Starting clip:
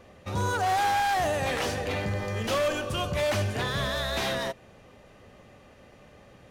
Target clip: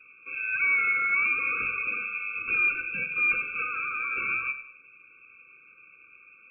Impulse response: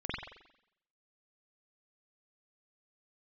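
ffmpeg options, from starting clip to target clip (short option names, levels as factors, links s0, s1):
-filter_complex "[0:a]aemphasis=mode=reproduction:type=bsi,lowpass=f=2600:t=q:w=0.5098,lowpass=f=2600:t=q:w=0.6013,lowpass=f=2600:t=q:w=0.9,lowpass=f=2600:t=q:w=2.563,afreqshift=-3000,asplit=2[s0][s1];[1:a]atrim=start_sample=2205,afade=t=out:st=0.32:d=0.01,atrim=end_sample=14553[s2];[s1][s2]afir=irnorm=-1:irlink=0,volume=0.211[s3];[s0][s3]amix=inputs=2:normalize=0,afftfilt=real='re*eq(mod(floor(b*sr/1024/540),2),0)':imag='im*eq(mod(floor(b*sr/1024/540),2),0)':win_size=1024:overlap=0.75"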